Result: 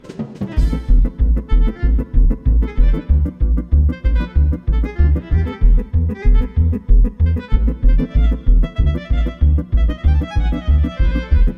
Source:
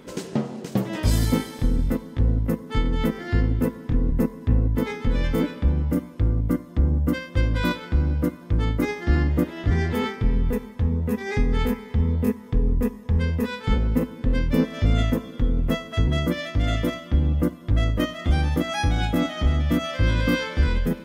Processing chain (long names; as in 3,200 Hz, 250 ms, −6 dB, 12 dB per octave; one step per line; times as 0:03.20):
phase-vocoder stretch with locked phases 0.55×
RIAA equalisation playback
mains-hum notches 60/120/180 Hz
one half of a high-frequency compander encoder only
level −5.5 dB